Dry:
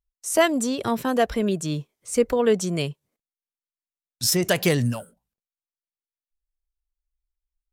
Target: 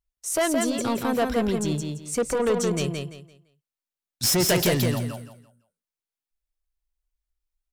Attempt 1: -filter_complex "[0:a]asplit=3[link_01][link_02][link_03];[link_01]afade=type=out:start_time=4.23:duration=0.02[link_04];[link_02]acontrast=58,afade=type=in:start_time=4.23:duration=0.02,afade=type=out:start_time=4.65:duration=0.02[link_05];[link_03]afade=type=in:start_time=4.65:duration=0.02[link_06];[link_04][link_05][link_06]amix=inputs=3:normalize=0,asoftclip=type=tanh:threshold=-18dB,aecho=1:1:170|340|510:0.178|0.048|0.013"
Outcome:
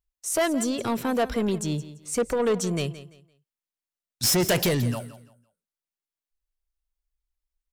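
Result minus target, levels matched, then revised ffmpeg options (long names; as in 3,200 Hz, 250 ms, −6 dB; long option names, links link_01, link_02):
echo-to-direct −11 dB
-filter_complex "[0:a]asplit=3[link_01][link_02][link_03];[link_01]afade=type=out:start_time=4.23:duration=0.02[link_04];[link_02]acontrast=58,afade=type=in:start_time=4.23:duration=0.02,afade=type=out:start_time=4.65:duration=0.02[link_05];[link_03]afade=type=in:start_time=4.65:duration=0.02[link_06];[link_04][link_05][link_06]amix=inputs=3:normalize=0,asoftclip=type=tanh:threshold=-18dB,aecho=1:1:170|340|510|680:0.631|0.17|0.046|0.0124"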